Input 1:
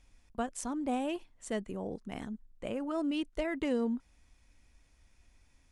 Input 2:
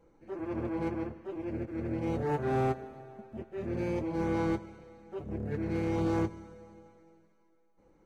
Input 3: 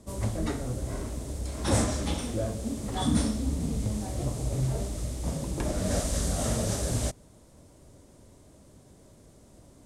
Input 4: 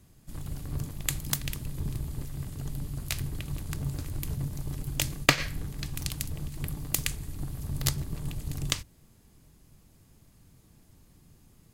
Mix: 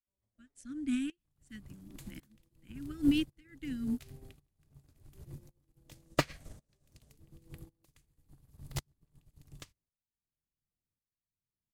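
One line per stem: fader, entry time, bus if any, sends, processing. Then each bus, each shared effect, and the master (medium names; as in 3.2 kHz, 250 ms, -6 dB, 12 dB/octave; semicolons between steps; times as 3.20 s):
+1.0 dB, 0.00 s, no send, elliptic band-stop 300–1500 Hz; level rider gain up to 9 dB
-8.0 dB, 1.60 s, no send, low-pass that closes with the level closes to 400 Hz, closed at -30 dBFS
-12.5 dB, 0.00 s, no send, auto duck -16 dB, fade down 1.70 s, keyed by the first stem
0.0 dB, 0.90 s, no send, slew-rate limiter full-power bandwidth 270 Hz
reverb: none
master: tremolo saw up 0.91 Hz, depth 75%; upward expansion 2.5:1, over -45 dBFS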